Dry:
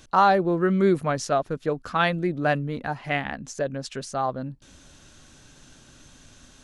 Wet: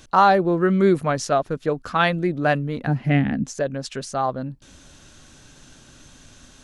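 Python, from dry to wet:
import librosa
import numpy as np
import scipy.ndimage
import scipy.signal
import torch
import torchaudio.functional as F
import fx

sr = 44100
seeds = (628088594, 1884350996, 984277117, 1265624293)

y = fx.graphic_eq(x, sr, hz=(125, 250, 1000, 4000, 8000), db=(10, 12, -10, -5, -7), at=(2.87, 3.44))
y = F.gain(torch.from_numpy(y), 3.0).numpy()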